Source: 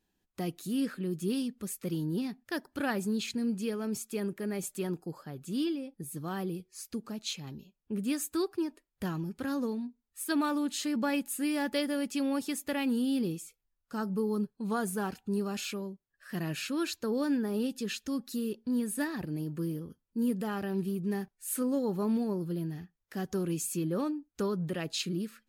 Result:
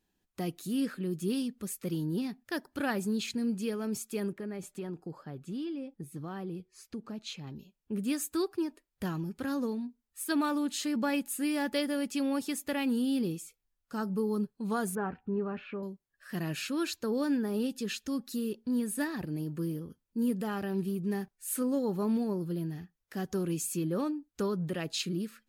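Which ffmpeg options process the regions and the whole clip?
ffmpeg -i in.wav -filter_complex "[0:a]asettb=1/sr,asplit=3[link_01][link_02][link_03];[link_01]atrim=end=4.324[link_04];[link_02]atrim=start=4.32:end=7.56,asetpts=PTS-STARTPTS,afade=type=in:duration=0.004:curve=qsin,afade=type=out:start_time=3.236:duration=0.004:curve=qsin,lowpass=frequency=2600:poles=1,acompressor=threshold=-34dB:ratio=4:attack=3.2:release=140:knee=1:detection=peak[link_05];[link_03]atrim=start=7.556[link_06];[link_04][link_05]acrossfade=duration=0.004:curve1=hsin:curve2=qsin[link_07];[link_07][link_06]acrossfade=duration=0.004:curve1=qsin:curve2=hsin,asettb=1/sr,asplit=3[link_08][link_09][link_10];[link_08]atrim=end=14.954[link_11];[link_09]atrim=start=14.95:end=15.83,asetpts=PTS-STARTPTS,afade=type=in:duration=0.004:curve=qsin,afade=type=out:start_time=0.876:duration=0.004:curve=qsin,lowpass=frequency=2100:width=0.5412,lowpass=frequency=2100:width=1.3066,asplit=2[link_12][link_13];[link_13]adelay=12,volume=-11dB[link_14];[link_12][link_14]amix=inputs=2:normalize=0,atrim=end_sample=38808[link_15];[link_10]atrim=start=15.826[link_16];[link_11][link_15]acrossfade=duration=0.004:curve1=hsin:curve2=qsin[link_17];[link_17][link_16]acrossfade=duration=0.004:curve1=qsin:curve2=hsin" out.wav

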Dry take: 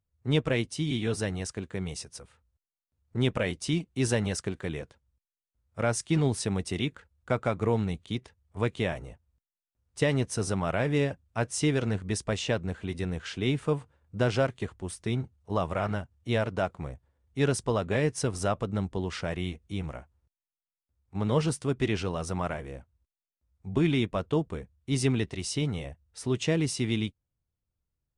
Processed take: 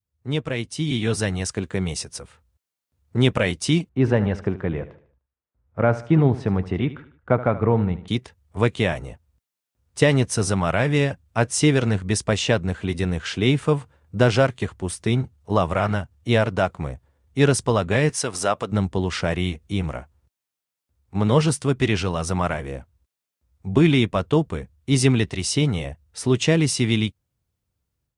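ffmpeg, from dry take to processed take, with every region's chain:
ffmpeg -i in.wav -filter_complex "[0:a]asettb=1/sr,asplit=3[link_01][link_02][link_03];[link_01]atrim=end=3.894[link_04];[link_02]atrim=start=3.89:end=8.08,asetpts=PTS-STARTPTS,afade=type=in:duration=0.004:curve=qsin,afade=type=out:start_time=4.186:duration=0.004:curve=qsin,lowpass=1500,aecho=1:1:75|150|225|300:0.178|0.0694|0.027|0.0105,atrim=end_sample=184779[link_05];[link_03]atrim=start=8.076[link_06];[link_04][link_05]acrossfade=duration=0.004:curve1=hsin:curve2=qsin[link_07];[link_07][link_06]acrossfade=duration=0.004:curve1=qsin:curve2=hsin,asettb=1/sr,asplit=3[link_08][link_09][link_10];[link_08]atrim=end=18.094[link_11];[link_09]atrim=start=18.09:end=18.72,asetpts=PTS-STARTPTS,afade=type=in:duration=0.004:curve=qsin,afade=type=out:start_time=0.626:duration=0.004:curve=qsin,highpass=frequency=500:poles=1,acompressor=mode=upward:threshold=-33dB:ratio=2.5:attack=3.2:release=140:knee=2.83:detection=peak[link_12];[link_10]atrim=start=18.716[link_13];[link_11][link_12]acrossfade=duration=0.004:curve1=hsin:curve2=qsin[link_14];[link_14][link_13]acrossfade=duration=0.004:curve1=qsin:curve2=hsin,highpass=54,adynamicequalizer=threshold=0.0141:dfrequency=380:dqfactor=0.74:tfrequency=380:tqfactor=0.74:attack=5:release=100:ratio=0.375:range=2.5:mode=cutabove:tftype=bell,dynaudnorm=framelen=550:gausssize=3:maxgain=9.5dB" out.wav

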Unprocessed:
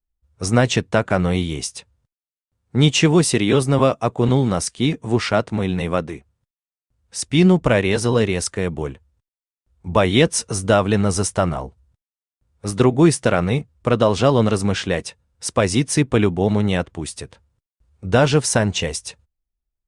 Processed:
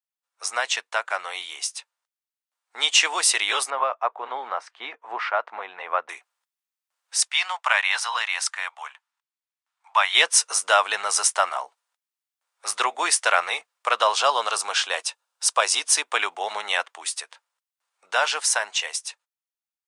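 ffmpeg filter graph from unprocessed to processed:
ffmpeg -i in.wav -filter_complex "[0:a]asettb=1/sr,asplit=3[link_01][link_02][link_03];[link_01]atrim=end=3.704[link_04];[link_02]atrim=start=3.7:end=6.09,asetpts=PTS-STARTPTS,afade=type=in:duration=0.004:curve=qsin,afade=type=out:start_time=2.386:duration=0.004:curve=qsin,lowpass=1500,tremolo=f=2.7:d=0.28[link_05];[link_03]atrim=start=6.086[link_06];[link_04][link_05]acrossfade=duration=0.004:curve1=hsin:curve2=qsin[link_07];[link_07][link_06]acrossfade=duration=0.004:curve1=qsin:curve2=hsin,asettb=1/sr,asplit=3[link_08][link_09][link_10];[link_08]atrim=end=7.284[link_11];[link_09]atrim=start=7.28:end=10.15,asetpts=PTS-STARTPTS,afade=type=in:duration=0.004:curve=qsin,afade=type=out:start_time=2.866:duration=0.004:curve=qsin,highpass=frequency=790:width=0.5412,highpass=frequency=790:width=1.3066,highshelf=frequency=5900:gain=-9.5[link_12];[link_10]atrim=start=10.146[link_13];[link_11][link_12]acrossfade=duration=0.004:curve1=hsin:curve2=qsin[link_14];[link_14][link_13]acrossfade=duration=0.004:curve1=qsin:curve2=hsin,asettb=1/sr,asplit=3[link_15][link_16][link_17];[link_15]atrim=end=14.124[link_18];[link_16]atrim=start=14.12:end=16.07,asetpts=PTS-STARTPTS,afade=type=in:duration=0.004:curve=qsin,afade=type=out:start_time=1.946:duration=0.004:curve=qsin,highpass=200,equalizer=frequency=2000:width=2.9:gain=-7[link_19];[link_17]atrim=start=16.066[link_20];[link_18][link_19]acrossfade=duration=0.004:curve1=hsin:curve2=qsin[link_21];[link_21][link_20]acrossfade=duration=0.004:curve1=qsin:curve2=hsin,highpass=frequency=830:width=0.5412,highpass=frequency=830:width=1.3066,dynaudnorm=framelen=340:gausssize=17:maxgain=11.5dB,volume=-1.5dB" out.wav

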